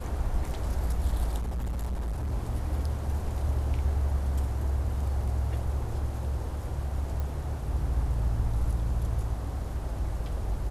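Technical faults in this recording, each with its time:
1.38–2.33 clipped -28 dBFS
7.2 pop

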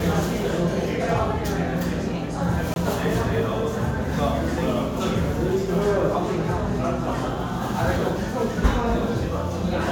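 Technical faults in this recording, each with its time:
2.74–2.76 gap 21 ms

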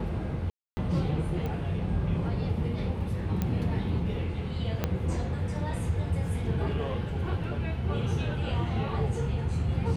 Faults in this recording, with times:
0.5–0.77 gap 0.27 s
1.46 pop -23 dBFS
3.42 pop -16 dBFS
4.84 pop -13 dBFS

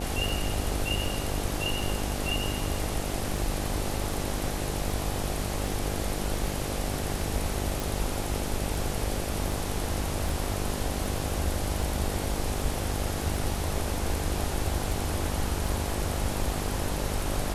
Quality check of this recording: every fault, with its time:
buzz 50 Hz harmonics 17 -34 dBFS
tick 78 rpm
7.8 pop

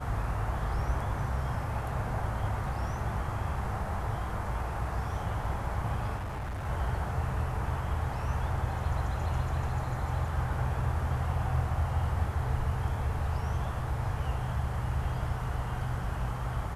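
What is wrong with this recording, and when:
6.17–6.65 clipped -32.5 dBFS

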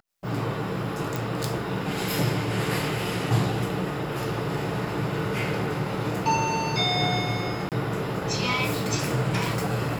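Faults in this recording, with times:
1.16 pop
7.69–7.72 gap 28 ms

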